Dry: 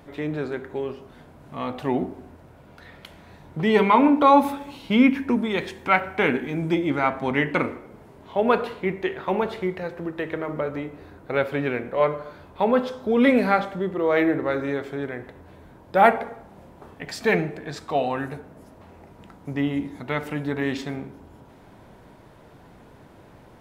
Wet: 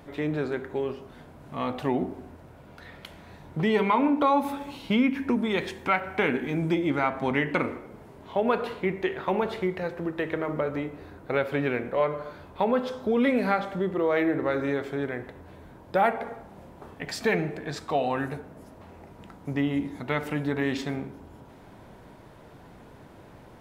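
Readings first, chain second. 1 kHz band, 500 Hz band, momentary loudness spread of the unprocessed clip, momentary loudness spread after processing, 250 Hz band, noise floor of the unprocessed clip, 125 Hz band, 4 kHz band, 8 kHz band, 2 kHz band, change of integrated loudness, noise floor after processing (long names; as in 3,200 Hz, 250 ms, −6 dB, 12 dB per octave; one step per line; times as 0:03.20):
−5.5 dB, −3.5 dB, 16 LU, 17 LU, −3.5 dB, −50 dBFS, −1.5 dB, −2.5 dB, can't be measured, −4.0 dB, −4.0 dB, −50 dBFS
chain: downward compressor 2.5 to 1, threshold −22 dBFS, peak gain reduction 8.5 dB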